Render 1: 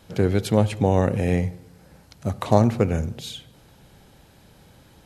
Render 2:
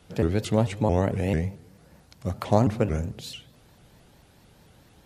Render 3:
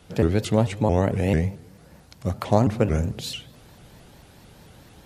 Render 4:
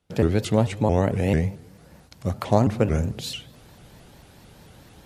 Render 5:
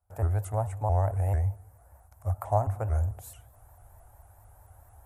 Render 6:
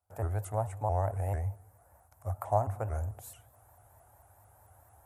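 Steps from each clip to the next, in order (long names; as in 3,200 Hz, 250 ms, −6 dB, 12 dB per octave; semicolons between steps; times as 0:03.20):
pitch modulation by a square or saw wave saw up 4.5 Hz, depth 250 cents; level −3.5 dB
speech leveller within 3 dB 0.5 s; level +3.5 dB
noise gate with hold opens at −41 dBFS
drawn EQ curve 100 Hz 0 dB, 160 Hz −29 dB, 480 Hz −17 dB, 690 Hz −1 dB, 1,500 Hz −10 dB, 3,100 Hz −29 dB, 4,500 Hz −30 dB, 8,100 Hz −7 dB, 12,000 Hz −1 dB
high-pass filter 110 Hz 12 dB per octave; level −1.5 dB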